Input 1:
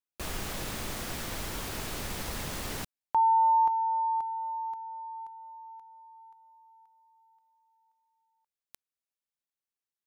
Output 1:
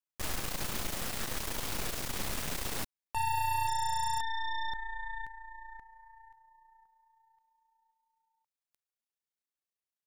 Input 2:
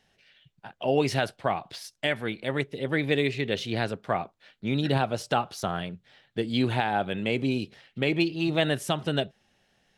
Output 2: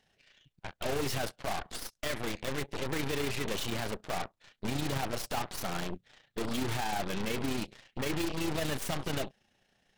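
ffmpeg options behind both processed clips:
-af "volume=21.1,asoftclip=hard,volume=0.0473,tremolo=f=29:d=0.462,aeval=exprs='0.0473*(cos(1*acos(clip(val(0)/0.0473,-1,1)))-cos(1*PI/2))+0.00266*(cos(4*acos(clip(val(0)/0.0473,-1,1)))-cos(4*PI/2))+0.0168*(cos(8*acos(clip(val(0)/0.0473,-1,1)))-cos(8*PI/2))':c=same,volume=0.794"

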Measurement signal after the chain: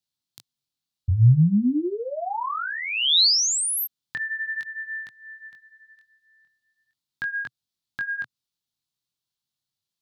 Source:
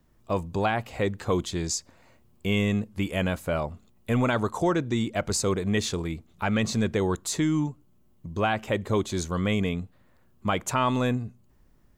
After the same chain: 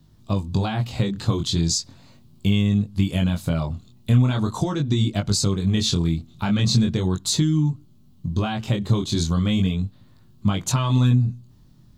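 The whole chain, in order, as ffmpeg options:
-af "flanger=delay=19.5:depth=5.4:speed=0.39,acompressor=threshold=0.0316:ratio=6,equalizer=f=125:t=o:w=1:g=12,equalizer=f=250:t=o:w=1:g=4,equalizer=f=500:t=o:w=1:g=-6,equalizer=f=2000:t=o:w=1:g=-7,equalizer=f=4000:t=o:w=1:g=11,volume=2.37"

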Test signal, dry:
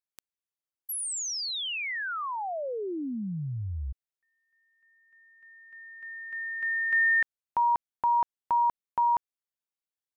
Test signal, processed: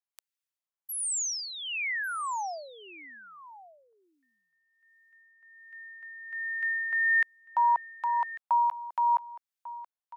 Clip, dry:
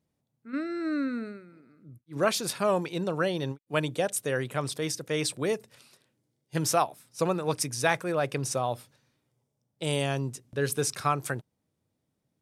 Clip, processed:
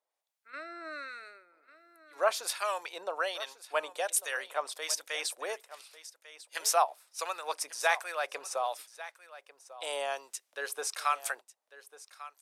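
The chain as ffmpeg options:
-filter_complex "[0:a]acrossover=split=1300[s0][s1];[s0]aeval=exprs='val(0)*(1-0.7/2+0.7/2*cos(2*PI*1.3*n/s))':c=same[s2];[s1]aeval=exprs='val(0)*(1-0.7/2-0.7/2*cos(2*PI*1.3*n/s))':c=same[s3];[s2][s3]amix=inputs=2:normalize=0,highpass=f=640:w=0.5412,highpass=f=640:w=1.3066,aecho=1:1:1146:0.15,volume=1.41"

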